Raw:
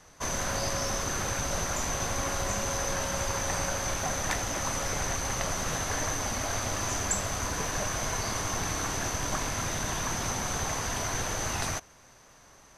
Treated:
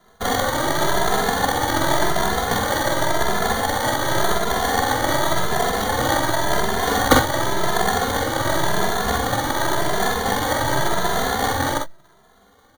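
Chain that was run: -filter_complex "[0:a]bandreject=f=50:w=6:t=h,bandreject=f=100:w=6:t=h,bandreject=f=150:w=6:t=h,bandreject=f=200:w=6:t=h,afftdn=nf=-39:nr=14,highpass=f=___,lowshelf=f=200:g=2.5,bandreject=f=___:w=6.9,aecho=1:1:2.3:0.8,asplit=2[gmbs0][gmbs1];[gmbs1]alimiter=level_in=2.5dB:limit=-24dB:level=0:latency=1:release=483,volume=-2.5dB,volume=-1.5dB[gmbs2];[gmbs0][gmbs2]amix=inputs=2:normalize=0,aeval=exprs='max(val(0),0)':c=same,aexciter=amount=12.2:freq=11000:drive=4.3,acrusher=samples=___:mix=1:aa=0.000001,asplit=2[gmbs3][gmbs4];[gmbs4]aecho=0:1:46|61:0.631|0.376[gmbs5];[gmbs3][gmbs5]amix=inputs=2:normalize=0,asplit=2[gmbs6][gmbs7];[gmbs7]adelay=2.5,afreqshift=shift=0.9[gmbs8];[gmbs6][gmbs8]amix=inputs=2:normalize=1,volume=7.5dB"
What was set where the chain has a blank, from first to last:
110, 3500, 17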